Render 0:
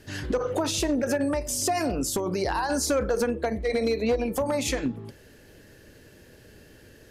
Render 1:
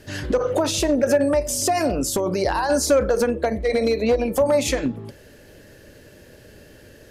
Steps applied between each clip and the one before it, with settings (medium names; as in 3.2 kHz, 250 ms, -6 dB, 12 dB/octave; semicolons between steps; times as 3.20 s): peaking EQ 580 Hz +6 dB 0.3 oct; trim +4 dB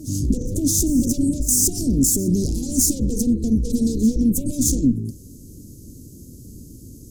Chebyshev shaper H 5 -7 dB, 6 -8 dB, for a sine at -8.5 dBFS; elliptic band-stop 280–6500 Hz, stop band 80 dB; reverse echo 620 ms -18 dB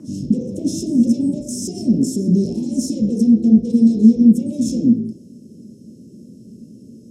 band-pass 150–6200 Hz; reverberation RT60 0.60 s, pre-delay 3 ms, DRR -1.5 dB; trim -5.5 dB